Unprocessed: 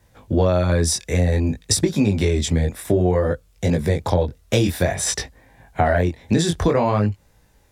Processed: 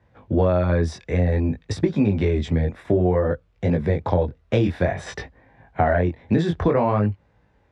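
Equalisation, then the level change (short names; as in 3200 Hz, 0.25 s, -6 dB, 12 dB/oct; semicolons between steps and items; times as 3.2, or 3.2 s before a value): HPF 61 Hz; LPF 2200 Hz 12 dB/oct; -1.0 dB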